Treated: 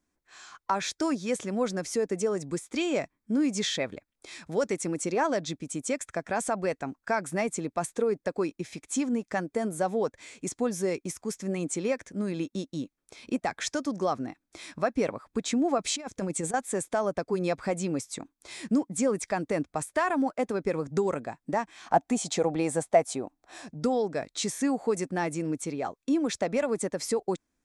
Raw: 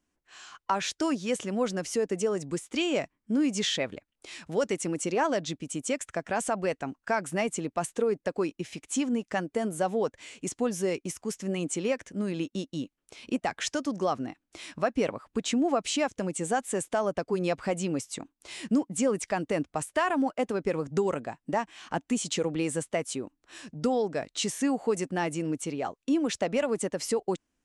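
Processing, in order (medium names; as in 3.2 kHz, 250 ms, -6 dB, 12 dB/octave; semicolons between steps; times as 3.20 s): band-stop 2.9 kHz, Q 5.5; 15.78–16.54 s: compressor with a negative ratio -31 dBFS, ratio -0.5; 21.86–23.70 s: peaking EQ 730 Hz +14 dB 0.58 oct; short-mantissa float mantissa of 8-bit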